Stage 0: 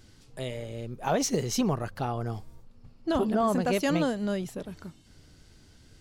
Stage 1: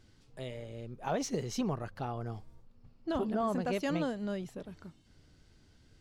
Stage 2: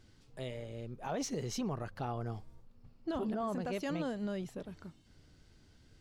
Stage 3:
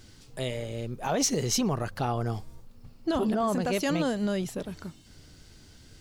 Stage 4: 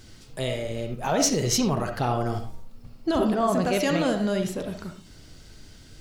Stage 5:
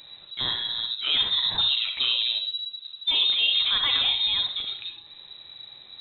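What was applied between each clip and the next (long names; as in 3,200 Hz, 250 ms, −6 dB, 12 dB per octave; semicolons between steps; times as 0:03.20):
high-shelf EQ 7,600 Hz −10 dB; level −6.5 dB
brickwall limiter −28.5 dBFS, peak gain reduction 6.5 dB
high-shelf EQ 4,400 Hz +9.5 dB; level +9 dB
convolution reverb RT60 0.35 s, pre-delay 20 ms, DRR 4.5 dB; level +3 dB
voice inversion scrambler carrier 3,900 Hz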